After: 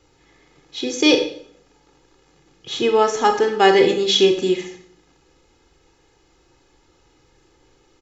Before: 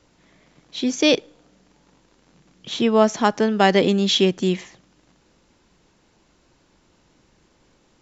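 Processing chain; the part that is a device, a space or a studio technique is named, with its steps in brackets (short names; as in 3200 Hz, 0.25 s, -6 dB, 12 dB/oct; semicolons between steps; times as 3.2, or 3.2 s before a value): microphone above a desk (comb 2.4 ms, depth 70%; reverb RT60 0.60 s, pre-delay 26 ms, DRR 4.5 dB); gain -1 dB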